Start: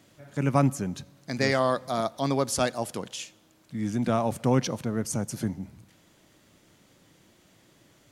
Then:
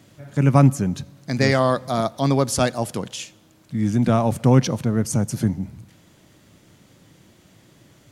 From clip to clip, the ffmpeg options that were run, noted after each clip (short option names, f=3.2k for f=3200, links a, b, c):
-af "equalizer=f=110:w=0.62:g=6.5,volume=4.5dB"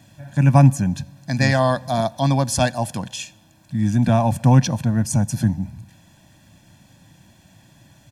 -af "aecho=1:1:1.2:0.81,volume=-1dB"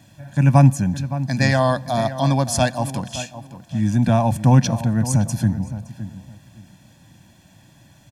-filter_complex "[0:a]asplit=2[a][b];[b]adelay=566,lowpass=f=2.2k:p=1,volume=-12.5dB,asplit=2[c][d];[d]adelay=566,lowpass=f=2.2k:p=1,volume=0.23,asplit=2[e][f];[f]adelay=566,lowpass=f=2.2k:p=1,volume=0.23[g];[a][c][e][g]amix=inputs=4:normalize=0"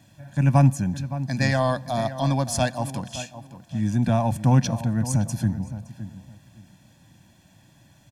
-af "aeval=exprs='0.841*(cos(1*acos(clip(val(0)/0.841,-1,1)))-cos(1*PI/2))+0.0106*(cos(8*acos(clip(val(0)/0.841,-1,1)))-cos(8*PI/2))':c=same,volume=-4.5dB"